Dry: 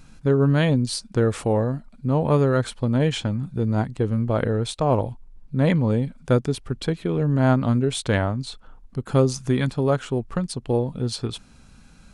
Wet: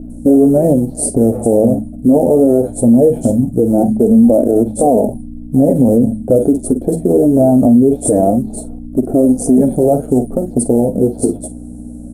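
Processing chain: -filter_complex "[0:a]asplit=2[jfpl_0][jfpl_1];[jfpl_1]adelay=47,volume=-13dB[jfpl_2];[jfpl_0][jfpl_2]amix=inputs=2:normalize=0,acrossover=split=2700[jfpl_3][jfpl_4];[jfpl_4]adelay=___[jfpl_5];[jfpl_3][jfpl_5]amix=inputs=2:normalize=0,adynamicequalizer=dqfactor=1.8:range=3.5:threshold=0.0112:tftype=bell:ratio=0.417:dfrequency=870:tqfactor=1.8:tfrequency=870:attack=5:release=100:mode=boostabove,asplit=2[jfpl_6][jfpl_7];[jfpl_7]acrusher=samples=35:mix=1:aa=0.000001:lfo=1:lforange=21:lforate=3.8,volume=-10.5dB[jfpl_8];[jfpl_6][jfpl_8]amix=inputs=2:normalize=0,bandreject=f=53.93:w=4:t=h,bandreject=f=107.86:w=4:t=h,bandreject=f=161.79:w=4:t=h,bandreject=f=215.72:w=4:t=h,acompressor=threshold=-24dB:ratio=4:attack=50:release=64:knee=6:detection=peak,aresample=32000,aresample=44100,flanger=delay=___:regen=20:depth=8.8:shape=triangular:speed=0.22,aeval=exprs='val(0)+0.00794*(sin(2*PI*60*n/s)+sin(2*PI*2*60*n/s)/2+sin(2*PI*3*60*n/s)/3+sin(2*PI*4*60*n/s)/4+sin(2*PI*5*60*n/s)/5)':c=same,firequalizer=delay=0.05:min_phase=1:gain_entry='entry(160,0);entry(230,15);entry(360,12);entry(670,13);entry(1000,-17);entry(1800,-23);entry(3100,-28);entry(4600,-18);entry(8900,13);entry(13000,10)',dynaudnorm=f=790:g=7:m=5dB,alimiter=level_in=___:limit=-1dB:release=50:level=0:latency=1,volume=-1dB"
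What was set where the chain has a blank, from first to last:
100, 2.8, 10dB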